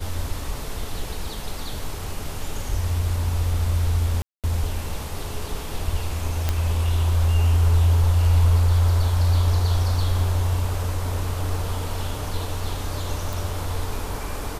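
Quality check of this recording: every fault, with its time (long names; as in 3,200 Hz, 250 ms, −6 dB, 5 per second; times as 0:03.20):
0:04.22–0:04.44: drop-out 217 ms
0:06.49: click −8 dBFS
0:13.33: click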